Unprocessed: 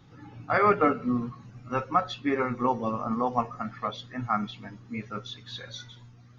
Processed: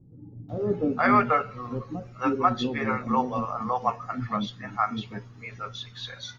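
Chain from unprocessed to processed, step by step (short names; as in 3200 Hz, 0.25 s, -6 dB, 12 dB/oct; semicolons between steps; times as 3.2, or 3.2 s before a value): bands offset in time lows, highs 0.49 s, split 460 Hz; gain +2.5 dB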